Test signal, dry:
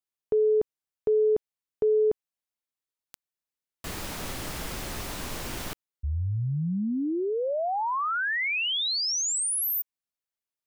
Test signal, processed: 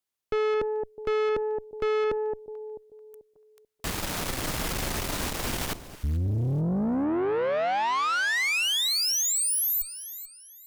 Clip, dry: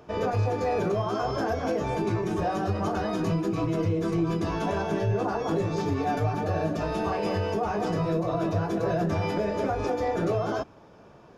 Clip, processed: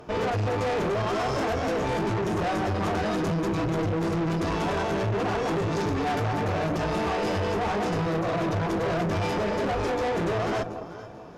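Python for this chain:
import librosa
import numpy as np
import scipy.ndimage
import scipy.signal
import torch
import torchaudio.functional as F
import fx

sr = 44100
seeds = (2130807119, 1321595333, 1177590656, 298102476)

y = fx.echo_alternate(x, sr, ms=219, hz=840.0, feedback_pct=56, wet_db=-12)
y = fx.tube_stage(y, sr, drive_db=33.0, bias=0.7)
y = y * 10.0 ** (9.0 / 20.0)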